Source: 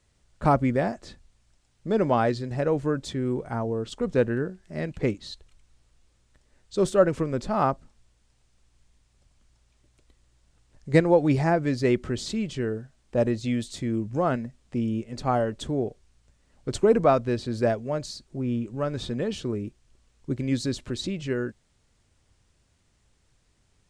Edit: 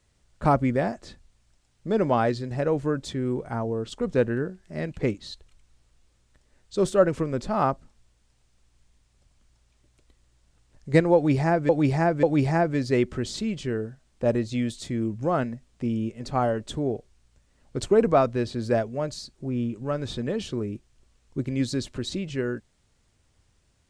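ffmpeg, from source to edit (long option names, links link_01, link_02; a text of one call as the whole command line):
ffmpeg -i in.wav -filter_complex "[0:a]asplit=3[link_01][link_02][link_03];[link_01]atrim=end=11.692[link_04];[link_02]atrim=start=11.148:end=11.692[link_05];[link_03]atrim=start=11.148[link_06];[link_04][link_05]acrossfade=duration=0.004:curve1=hsin:curve2=hsin[link_07];[link_07][link_06]acrossfade=duration=0.004:curve1=hsin:curve2=hsin" out.wav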